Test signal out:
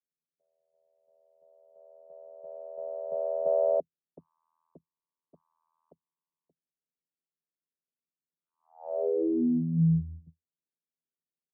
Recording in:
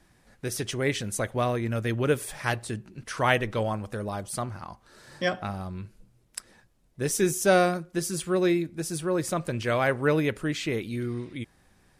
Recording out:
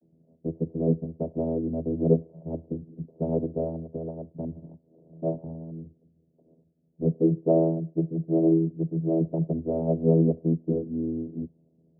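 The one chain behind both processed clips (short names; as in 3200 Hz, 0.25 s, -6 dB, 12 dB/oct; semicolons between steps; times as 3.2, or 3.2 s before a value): steep low-pass 610 Hz 72 dB/oct; vocoder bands 16, saw 81.5 Hz; gain +3.5 dB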